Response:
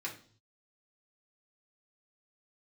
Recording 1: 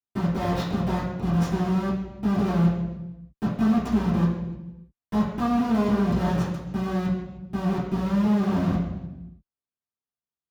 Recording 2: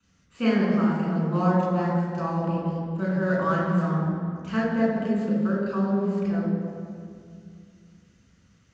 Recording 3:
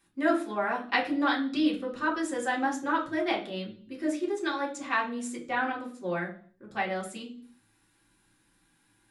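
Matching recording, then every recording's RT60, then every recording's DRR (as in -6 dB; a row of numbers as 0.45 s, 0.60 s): 3; 1.0 s, 2.3 s, 0.50 s; -12.0 dB, -5.5 dB, -3.0 dB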